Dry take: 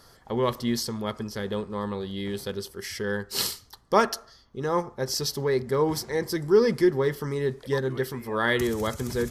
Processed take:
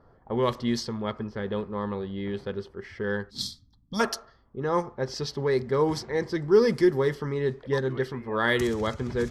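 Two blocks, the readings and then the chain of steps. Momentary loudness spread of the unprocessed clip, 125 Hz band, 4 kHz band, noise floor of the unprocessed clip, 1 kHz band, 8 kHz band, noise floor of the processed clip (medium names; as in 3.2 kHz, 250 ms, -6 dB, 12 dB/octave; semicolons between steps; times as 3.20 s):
10 LU, 0.0 dB, -3.5 dB, -55 dBFS, -2.0 dB, -7.5 dB, -60 dBFS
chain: level-controlled noise filter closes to 900 Hz, open at -18.5 dBFS; time-frequency box 3.30–4.00 s, 310–3200 Hz -23 dB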